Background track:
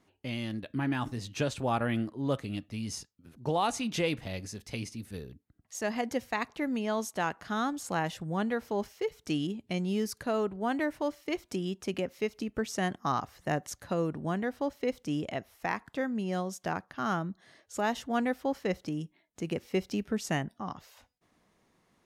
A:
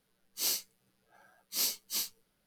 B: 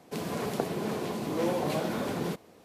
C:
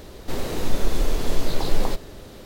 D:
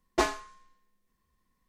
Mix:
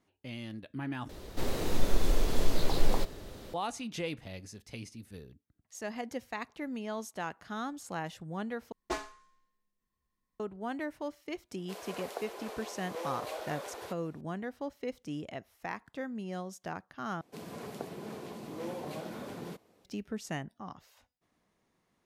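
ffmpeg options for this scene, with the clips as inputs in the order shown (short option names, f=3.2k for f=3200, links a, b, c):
-filter_complex "[2:a]asplit=2[a][b];[0:a]volume=-6.5dB[c];[a]highpass=f=460:w=0.5412,highpass=f=460:w=1.3066[d];[c]asplit=4[e][f][g][h];[e]atrim=end=1.094[i];[3:a]atrim=end=2.45,asetpts=PTS-STARTPTS,volume=-5dB[j];[f]atrim=start=3.536:end=8.724[k];[4:a]atrim=end=1.68,asetpts=PTS-STARTPTS,volume=-9.5dB[l];[g]atrim=start=10.396:end=17.214[m];[b]atrim=end=2.64,asetpts=PTS-STARTPTS,volume=-10.5dB[n];[h]atrim=start=19.846[o];[d]atrim=end=2.64,asetpts=PTS-STARTPTS,volume=-7dB,afade=t=in:d=0.004:c=hsin,afade=t=out:st=2.636:d=0.004:c=hsin,adelay=11570[p];[i][j]acrossfade=d=0.004:c1=hsin:c2=hsin[q];[q][k]acrossfade=d=0.004:c1=hsin:c2=hsin[r];[r][l]acrossfade=d=0.004:c1=hsin:c2=hsin[s];[s][m]acrossfade=d=0.004:c1=hsin:c2=hsin[t];[t][n]acrossfade=d=0.004:c1=hsin:c2=hsin[u];[u][o]acrossfade=d=0.004:c1=hsin:c2=hsin[v];[v][p]amix=inputs=2:normalize=0"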